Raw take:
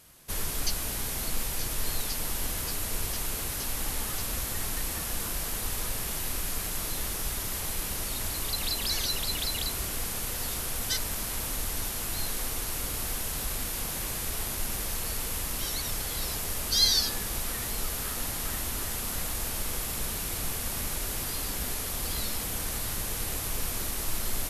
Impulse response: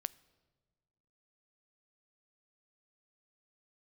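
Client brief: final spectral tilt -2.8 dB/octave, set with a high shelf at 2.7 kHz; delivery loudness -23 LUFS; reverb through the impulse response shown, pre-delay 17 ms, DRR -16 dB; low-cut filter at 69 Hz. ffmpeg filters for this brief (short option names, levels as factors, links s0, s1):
-filter_complex "[0:a]highpass=69,highshelf=f=2700:g=-8.5,asplit=2[s0][s1];[1:a]atrim=start_sample=2205,adelay=17[s2];[s1][s2]afir=irnorm=-1:irlink=0,volume=7.5[s3];[s0][s3]amix=inputs=2:normalize=0,volume=0.75"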